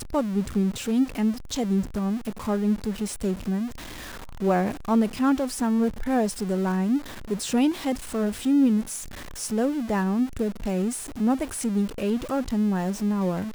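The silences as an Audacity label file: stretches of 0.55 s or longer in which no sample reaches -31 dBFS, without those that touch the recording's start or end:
3.680000	4.410000	silence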